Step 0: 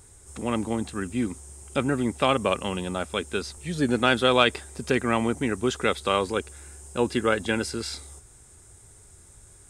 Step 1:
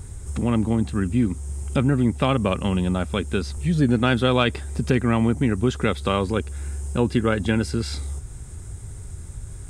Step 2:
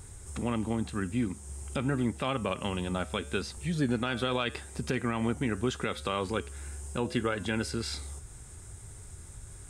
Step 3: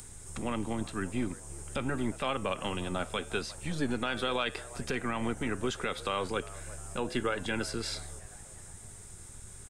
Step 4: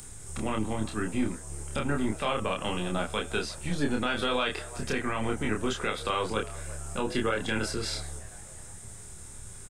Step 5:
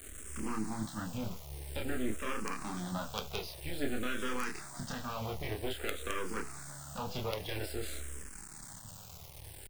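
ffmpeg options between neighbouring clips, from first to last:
ffmpeg -i in.wav -af "bass=frequency=250:gain=13,treble=frequency=4000:gain=-3,acompressor=threshold=-37dB:ratio=1.5,volume=7dB" out.wav
ffmpeg -i in.wav -af "flanger=delay=6.5:depth=2.5:regen=-89:speed=0.83:shape=triangular,lowshelf=frequency=370:gain=-9,alimiter=limit=-19dB:level=0:latency=1:release=95,volume=1.5dB" out.wav
ffmpeg -i in.wav -filter_complex "[0:a]acrossover=split=300|2200[link_01][link_02][link_03];[link_01]aeval=exprs='max(val(0),0)':channel_layout=same[link_04];[link_02]asplit=5[link_05][link_06][link_07][link_08][link_09];[link_06]adelay=356,afreqshift=92,volume=-17dB[link_10];[link_07]adelay=712,afreqshift=184,volume=-23dB[link_11];[link_08]adelay=1068,afreqshift=276,volume=-29dB[link_12];[link_09]adelay=1424,afreqshift=368,volume=-35.1dB[link_13];[link_05][link_10][link_11][link_12][link_13]amix=inputs=5:normalize=0[link_14];[link_03]acompressor=mode=upward:threshold=-46dB:ratio=2.5[link_15];[link_04][link_14][link_15]amix=inputs=3:normalize=0" out.wav
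ffmpeg -i in.wav -filter_complex "[0:a]asplit=2[link_01][link_02];[link_02]adelay=28,volume=-3dB[link_03];[link_01][link_03]amix=inputs=2:normalize=0,volume=1.5dB" out.wav
ffmpeg -i in.wav -filter_complex "[0:a]acrusher=bits=4:dc=4:mix=0:aa=0.000001,asplit=2[link_01][link_02];[link_02]afreqshift=-0.51[link_03];[link_01][link_03]amix=inputs=2:normalize=1,volume=-2.5dB" out.wav

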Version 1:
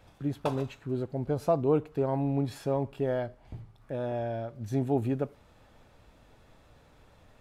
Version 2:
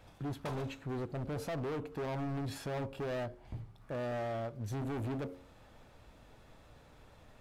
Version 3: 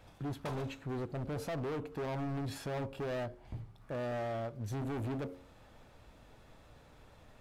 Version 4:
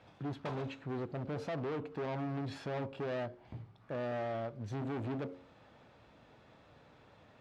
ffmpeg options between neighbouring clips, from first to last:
ffmpeg -i in.wav -af "bandreject=frequency=90.43:width_type=h:width=4,bandreject=frequency=180.86:width_type=h:width=4,bandreject=frequency=271.29:width_type=h:width=4,bandreject=frequency=361.72:width_type=h:width=4,bandreject=frequency=452.15:width_type=h:width=4,bandreject=frequency=542.58:width_type=h:width=4,alimiter=limit=-22.5dB:level=0:latency=1:release=47,volume=35dB,asoftclip=hard,volume=-35dB" out.wav
ffmpeg -i in.wav -af anull out.wav
ffmpeg -i in.wav -af "highpass=110,lowpass=4400" out.wav

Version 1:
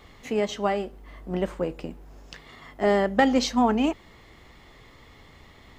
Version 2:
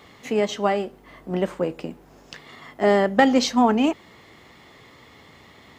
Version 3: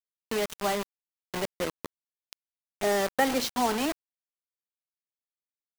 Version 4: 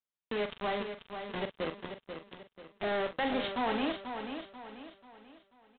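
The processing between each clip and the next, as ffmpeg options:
ffmpeg -i in.wav -af "highpass=120,volume=3.5dB" out.wav
ffmpeg -i in.wav -filter_complex "[0:a]acrossover=split=290|520|1500[link_01][link_02][link_03][link_04];[link_01]alimiter=level_in=4dB:limit=-24dB:level=0:latency=1,volume=-4dB[link_05];[link_05][link_02][link_03][link_04]amix=inputs=4:normalize=0,acrusher=bits=3:mix=0:aa=0.000001,volume=-7.5dB" out.wav
ffmpeg -i in.wav -filter_complex "[0:a]aresample=8000,asoftclip=type=tanh:threshold=-28.5dB,aresample=44100,asplit=2[link_01][link_02];[link_02]adelay=43,volume=-9dB[link_03];[link_01][link_03]amix=inputs=2:normalize=0,aecho=1:1:488|976|1464|1952|2440:0.398|0.159|0.0637|0.0255|0.0102" out.wav

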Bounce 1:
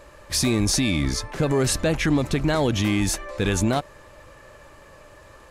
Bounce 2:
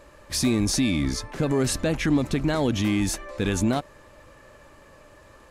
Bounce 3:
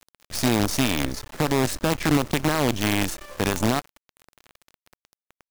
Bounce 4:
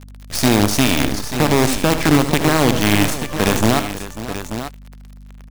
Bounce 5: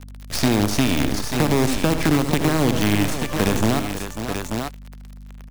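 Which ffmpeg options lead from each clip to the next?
ffmpeg -i in.wav -af "equalizer=frequency=250:width_type=o:width=0.7:gain=5,volume=-3.5dB" out.wav
ffmpeg -i in.wav -af "acrusher=bits=4:dc=4:mix=0:aa=0.000001" out.wav
ffmpeg -i in.wav -af "aeval=exprs='val(0)+0.00631*(sin(2*PI*50*n/s)+sin(2*PI*2*50*n/s)/2+sin(2*PI*3*50*n/s)/3+sin(2*PI*4*50*n/s)/4+sin(2*PI*5*50*n/s)/5)':channel_layout=same,aecho=1:1:77|134|544|886:0.299|0.112|0.2|0.299,volume=6.5dB" out.wav
ffmpeg -i in.wav -filter_complex "[0:a]acrossover=split=440|5200[link_01][link_02][link_03];[link_01]acompressor=threshold=-16dB:ratio=4[link_04];[link_02]acompressor=threshold=-23dB:ratio=4[link_05];[link_03]acompressor=threshold=-30dB:ratio=4[link_06];[link_04][link_05][link_06]amix=inputs=3:normalize=0" out.wav

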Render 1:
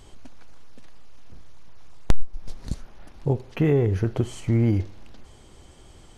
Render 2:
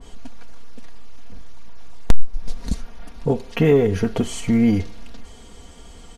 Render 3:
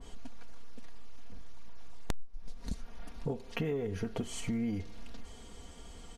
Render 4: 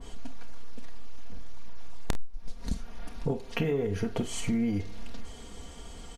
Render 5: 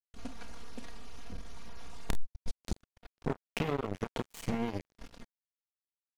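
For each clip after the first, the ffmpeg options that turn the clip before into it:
ffmpeg -i in.wav -af "aecho=1:1:4.3:0.71,acontrast=44,adynamicequalizer=threshold=0.0141:dfrequency=2000:dqfactor=0.7:tfrequency=2000:tqfactor=0.7:attack=5:release=100:ratio=0.375:range=2:mode=boostabove:tftype=highshelf,volume=-1dB" out.wav
ffmpeg -i in.wav -af "acompressor=threshold=-26dB:ratio=4,volume=-7dB" out.wav
ffmpeg -i in.wav -af "aecho=1:1:30|49:0.2|0.2,volume=5dB" out.wav
ffmpeg -i in.wav -af "acrusher=bits=3:mix=0:aa=0.5,volume=-4dB" out.wav

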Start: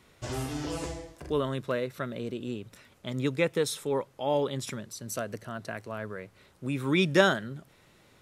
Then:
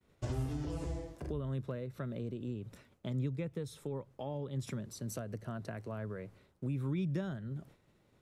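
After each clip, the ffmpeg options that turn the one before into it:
ffmpeg -i in.wav -filter_complex "[0:a]tiltshelf=frequency=800:gain=5,acrossover=split=140[link_01][link_02];[link_02]acompressor=threshold=-37dB:ratio=10[link_03];[link_01][link_03]amix=inputs=2:normalize=0,agate=range=-33dB:threshold=-50dB:ratio=3:detection=peak,volume=-2dB" out.wav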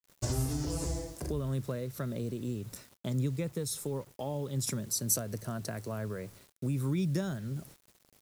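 ffmpeg -i in.wav -af "aexciter=amount=2.8:drive=8.8:freq=4400,acrusher=bits=9:mix=0:aa=0.000001,volume=4dB" out.wav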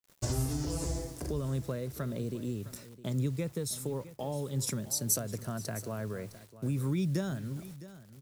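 ffmpeg -i in.wav -af "aecho=1:1:660:0.158" out.wav

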